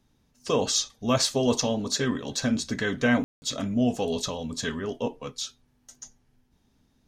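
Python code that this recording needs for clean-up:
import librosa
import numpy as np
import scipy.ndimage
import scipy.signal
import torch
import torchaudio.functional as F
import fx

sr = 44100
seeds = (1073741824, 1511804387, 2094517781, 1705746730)

y = fx.fix_ambience(x, sr, seeds[0], print_start_s=6.44, print_end_s=6.94, start_s=3.24, end_s=3.42)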